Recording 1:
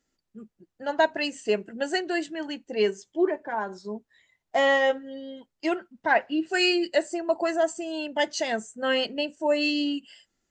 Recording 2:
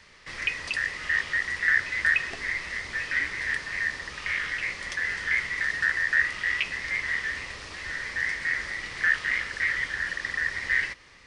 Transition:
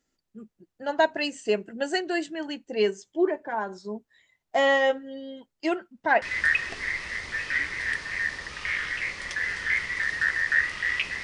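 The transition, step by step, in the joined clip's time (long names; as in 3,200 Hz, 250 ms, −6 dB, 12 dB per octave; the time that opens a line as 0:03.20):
recording 1
0:06.22: continue with recording 2 from 0:01.83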